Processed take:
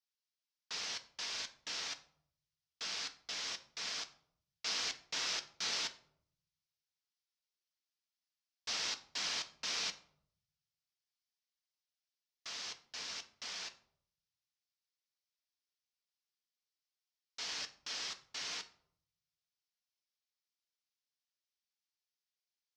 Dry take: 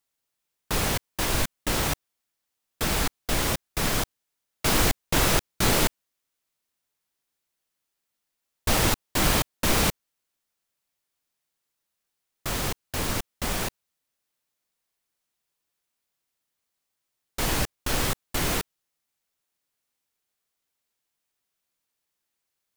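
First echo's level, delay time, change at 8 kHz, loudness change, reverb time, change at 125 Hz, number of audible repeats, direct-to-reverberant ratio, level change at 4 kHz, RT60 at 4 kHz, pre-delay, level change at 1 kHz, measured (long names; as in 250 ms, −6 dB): no echo audible, no echo audible, −14.0 dB, −13.5 dB, 0.65 s, −37.5 dB, no echo audible, 6.5 dB, −8.0 dB, 0.35 s, 4 ms, −19.5 dB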